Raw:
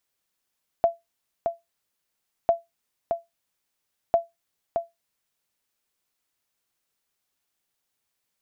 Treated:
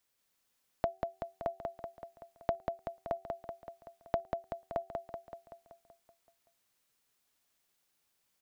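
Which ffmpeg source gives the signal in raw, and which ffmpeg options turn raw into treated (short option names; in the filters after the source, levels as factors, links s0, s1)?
-f lavfi -i "aevalsrc='0.299*(sin(2*PI*676*mod(t,1.65))*exp(-6.91*mod(t,1.65)/0.18)+0.501*sin(2*PI*676*max(mod(t,1.65)-0.62,0))*exp(-6.91*max(mod(t,1.65)-0.62,0)/0.18))':d=4.95:s=44100"
-filter_complex "[0:a]bandreject=f=380.6:t=h:w=4,bandreject=f=761.2:t=h:w=4,acrossover=split=360[s0][s1];[s1]acompressor=threshold=0.0141:ratio=3[s2];[s0][s2]amix=inputs=2:normalize=0,aecho=1:1:190|380|570|760|950|1140|1330|1520|1710:0.631|0.379|0.227|0.136|0.0818|0.0491|0.0294|0.0177|0.0106"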